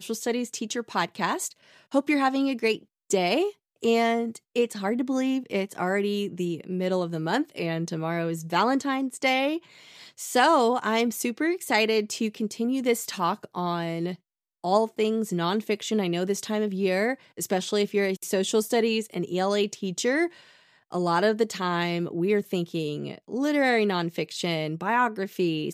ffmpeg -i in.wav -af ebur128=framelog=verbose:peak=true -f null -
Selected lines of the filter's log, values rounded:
Integrated loudness:
  I:         -26.3 LUFS
  Threshold: -36.4 LUFS
Loudness range:
  LRA:         2.9 LU
  Threshold: -46.4 LUFS
  LRA low:   -27.5 LUFS
  LRA high:  -24.6 LUFS
True peak:
  Peak:       -8.5 dBFS